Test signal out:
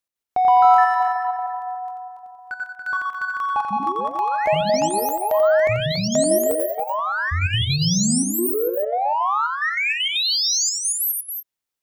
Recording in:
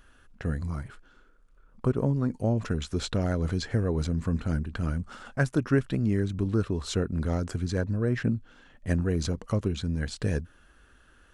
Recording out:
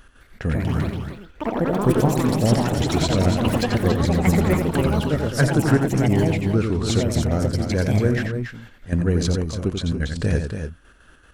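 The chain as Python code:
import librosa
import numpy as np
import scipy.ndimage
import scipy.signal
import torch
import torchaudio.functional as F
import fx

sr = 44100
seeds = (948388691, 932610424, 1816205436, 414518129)

p1 = 10.0 ** (-28.5 / 20.0) * np.tanh(x / 10.0 ** (-28.5 / 20.0))
p2 = x + (p1 * librosa.db_to_amplitude(-6.0))
p3 = fx.step_gate(p2, sr, bpm=195, pattern='x.x.xxxxxxx..x.x', floor_db=-12.0, edge_ms=4.5)
p4 = fx.echo_pitch(p3, sr, ms=210, semitones=5, count=3, db_per_echo=-3.0)
p5 = fx.echo_multitap(p4, sr, ms=(88, 283, 308), db=(-6.5, -7.5, -19.0))
y = p5 * librosa.db_to_amplitude(4.0)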